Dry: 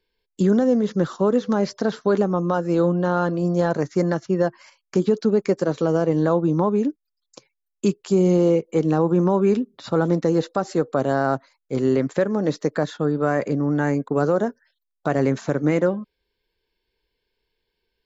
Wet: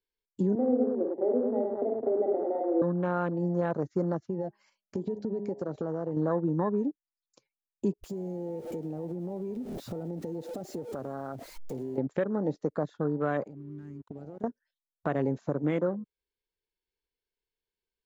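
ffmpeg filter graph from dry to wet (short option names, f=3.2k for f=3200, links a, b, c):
-filter_complex "[0:a]asettb=1/sr,asplit=3[a][b][c];[a]atrim=end=0.554[d];[b]atrim=start=0.55:end=2.82,asetpts=PTS-STARTPTS,afade=t=in:d=0.004:c=qsin,afade=t=out:st=2.266:d=0.004:c=qsin,asuperpass=centerf=440:order=20:qfactor=0.75,aecho=1:1:48|66|102|176|211:0.596|0.282|0.596|0.168|0.531,atrim=end_sample=100107[e];[c]atrim=start=2.816[f];[d][e]acrossfade=d=0.004:c1=hsin:c2=qsin[g];[g][f]acrossfade=d=0.004:c1=qsin:c2=hsin,asettb=1/sr,asplit=3[h][i][j];[h]atrim=end=4.224[k];[i]atrim=start=4.22:end=6.17,asetpts=PTS-STARTPTS,afade=t=in:d=0.004:c=qsin,afade=t=out:st=1.946:d=0.004:c=qsin,bandreject=f=205.9:t=h:w=4,bandreject=f=411.8:t=h:w=4,bandreject=f=617.7:t=h:w=4,bandreject=f=823.6:t=h:w=4,acompressor=threshold=-22dB:ratio=6:attack=3.2:release=140:knee=1:detection=peak[l];[j]atrim=start=6.166[m];[k][l]acrossfade=d=0.004:c1=hsin:c2=qsin[n];[n][m]acrossfade=d=0.004:c1=qsin:c2=hsin,asettb=1/sr,asplit=3[o][p][q];[o]atrim=end=8.034[r];[p]atrim=start=8.03:end=11.98,asetpts=PTS-STARTPTS,afade=t=in:d=0.004:c=qsin,afade=t=out:st=3.946:d=0.004:c=qsin,aeval=exprs='val(0)+0.5*0.0447*sgn(val(0))':c=same,highshelf=f=5.8k:g=8,acompressor=threshold=-28dB:ratio=10:attack=3.2:release=140:knee=1:detection=peak[s];[q]atrim=start=11.976[t];[r][s]acrossfade=d=0.004:c1=hsin:c2=qsin[u];[u][t]acrossfade=d=0.004:c1=qsin:c2=hsin,asettb=1/sr,asplit=3[v][w][x];[v]atrim=end=13.464[y];[w]atrim=start=13.46:end=14.44,asetpts=PTS-STARTPTS,afade=t=in:d=0.004:c=qsin,afade=t=out:st=0.976:d=0.004:c=qsin,equalizer=f=620:w=1.1:g=-10,acompressor=threshold=-33dB:ratio=20:attack=3.2:release=140:knee=1:detection=peak,aeval=exprs='sgn(val(0))*max(abs(val(0))-0.00355,0)':c=same[z];[x]atrim=start=14.436[aa];[y][z]acrossfade=d=0.004:c1=hsin:c2=qsin[ab];[ab][aa]acrossfade=d=0.004:c1=qsin:c2=hsin,afwtdn=0.0282,acompressor=threshold=-35dB:ratio=1.5,volume=-1.5dB"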